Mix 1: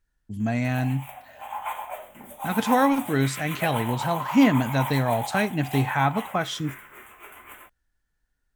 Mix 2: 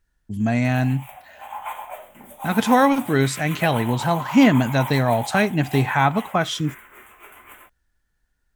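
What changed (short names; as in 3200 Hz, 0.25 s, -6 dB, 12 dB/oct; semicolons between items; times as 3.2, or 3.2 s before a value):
speech +6.0 dB; reverb: off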